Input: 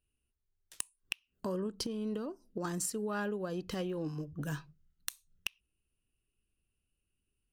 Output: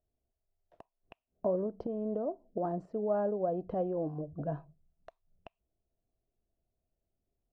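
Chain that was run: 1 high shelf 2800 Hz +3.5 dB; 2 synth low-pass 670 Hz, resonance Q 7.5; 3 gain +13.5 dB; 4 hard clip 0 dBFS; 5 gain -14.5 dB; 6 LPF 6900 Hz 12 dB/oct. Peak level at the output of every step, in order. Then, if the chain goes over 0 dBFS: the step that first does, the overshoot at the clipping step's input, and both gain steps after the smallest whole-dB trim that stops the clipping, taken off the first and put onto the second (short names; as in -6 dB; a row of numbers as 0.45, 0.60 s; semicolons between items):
-14.5, -18.5, -5.0, -5.0, -19.5, -19.5 dBFS; no overload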